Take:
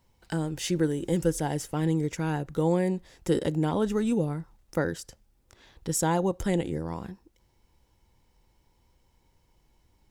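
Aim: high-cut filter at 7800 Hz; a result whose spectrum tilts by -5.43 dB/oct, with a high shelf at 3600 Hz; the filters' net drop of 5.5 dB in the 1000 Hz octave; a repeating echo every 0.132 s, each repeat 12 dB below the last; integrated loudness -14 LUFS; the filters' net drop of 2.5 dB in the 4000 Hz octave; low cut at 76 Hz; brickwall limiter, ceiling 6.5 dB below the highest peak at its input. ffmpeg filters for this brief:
-af "highpass=76,lowpass=7.8k,equalizer=f=1k:t=o:g=-7.5,highshelf=f=3.6k:g=7,equalizer=f=4k:t=o:g=-8,alimiter=limit=-19.5dB:level=0:latency=1,aecho=1:1:132|264|396:0.251|0.0628|0.0157,volume=16.5dB"

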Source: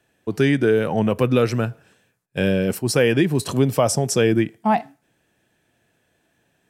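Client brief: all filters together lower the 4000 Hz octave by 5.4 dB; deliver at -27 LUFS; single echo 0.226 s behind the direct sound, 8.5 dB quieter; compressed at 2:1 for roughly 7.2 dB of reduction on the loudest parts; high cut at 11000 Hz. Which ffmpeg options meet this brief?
-af "lowpass=11k,equalizer=f=4k:t=o:g=-8,acompressor=threshold=-26dB:ratio=2,aecho=1:1:226:0.376,volume=-1dB"

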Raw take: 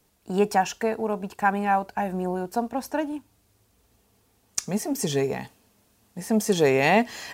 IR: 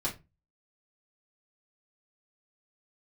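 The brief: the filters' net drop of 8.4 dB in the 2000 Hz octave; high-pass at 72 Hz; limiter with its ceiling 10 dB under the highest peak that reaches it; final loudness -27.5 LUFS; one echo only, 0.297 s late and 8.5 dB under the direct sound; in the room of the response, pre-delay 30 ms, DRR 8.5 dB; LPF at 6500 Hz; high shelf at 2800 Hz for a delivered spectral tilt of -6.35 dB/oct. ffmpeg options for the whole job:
-filter_complex "[0:a]highpass=72,lowpass=6.5k,equalizer=f=2k:t=o:g=-8,highshelf=f=2.8k:g=-6.5,alimiter=limit=-18.5dB:level=0:latency=1,aecho=1:1:297:0.376,asplit=2[a][b];[1:a]atrim=start_sample=2205,adelay=30[c];[b][c]afir=irnorm=-1:irlink=0,volume=-14dB[d];[a][d]amix=inputs=2:normalize=0,volume=1.5dB"

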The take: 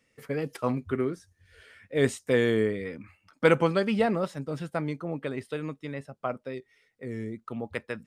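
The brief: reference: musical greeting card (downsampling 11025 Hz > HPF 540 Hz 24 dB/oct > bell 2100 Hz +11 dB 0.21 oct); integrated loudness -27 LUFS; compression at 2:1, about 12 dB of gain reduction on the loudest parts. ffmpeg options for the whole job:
-af "acompressor=threshold=-38dB:ratio=2,aresample=11025,aresample=44100,highpass=f=540:w=0.5412,highpass=f=540:w=1.3066,equalizer=f=2.1k:t=o:w=0.21:g=11,volume=14.5dB"

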